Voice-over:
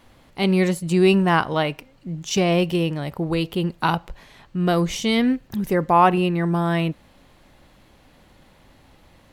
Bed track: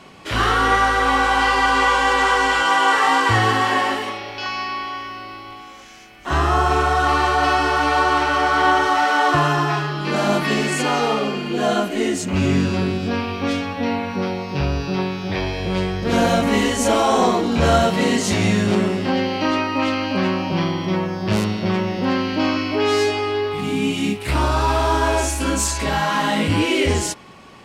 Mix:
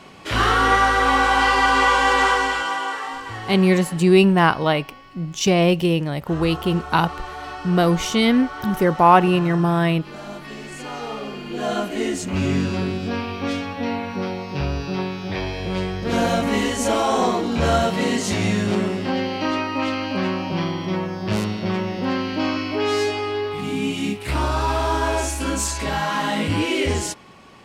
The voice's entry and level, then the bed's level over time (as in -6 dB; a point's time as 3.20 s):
3.10 s, +2.5 dB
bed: 2.25 s 0 dB
3.23 s -16 dB
10.53 s -16 dB
11.90 s -3 dB